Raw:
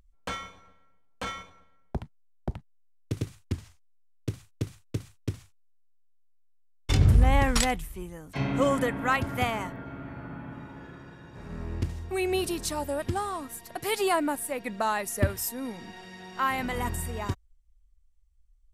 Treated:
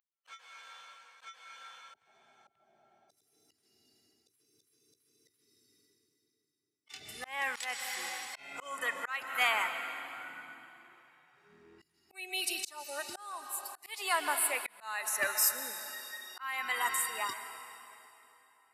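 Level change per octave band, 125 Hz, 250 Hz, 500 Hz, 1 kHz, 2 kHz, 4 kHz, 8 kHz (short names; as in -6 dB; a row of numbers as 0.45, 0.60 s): under -40 dB, -24.5 dB, -14.0 dB, -6.5 dB, -0.5 dB, -1.5 dB, +1.0 dB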